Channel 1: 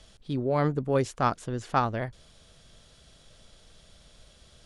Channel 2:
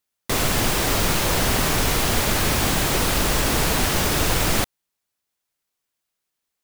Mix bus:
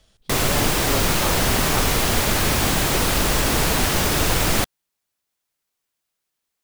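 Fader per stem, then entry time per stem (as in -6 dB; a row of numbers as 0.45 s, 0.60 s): -5.0 dB, +1.0 dB; 0.00 s, 0.00 s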